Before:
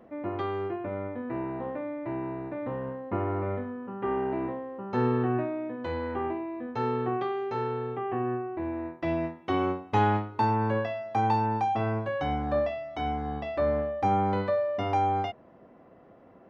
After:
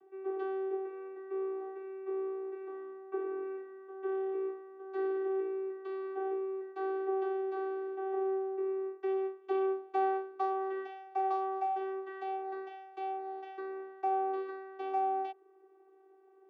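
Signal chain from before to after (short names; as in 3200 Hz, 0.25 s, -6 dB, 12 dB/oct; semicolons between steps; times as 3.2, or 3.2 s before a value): 3.15–5.45 dynamic EQ 680 Hz, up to -6 dB, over -44 dBFS, Q 1.6; vocoder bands 16, saw 384 Hz; gain -5 dB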